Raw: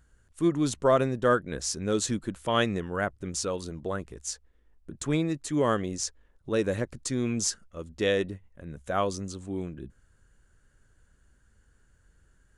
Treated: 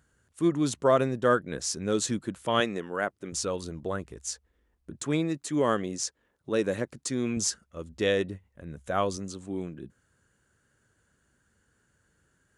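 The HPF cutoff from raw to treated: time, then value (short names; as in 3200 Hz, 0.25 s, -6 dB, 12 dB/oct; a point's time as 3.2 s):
100 Hz
from 2.6 s 240 Hz
from 3.32 s 56 Hz
from 5.01 s 140 Hz
from 7.37 s 54 Hz
from 9.17 s 120 Hz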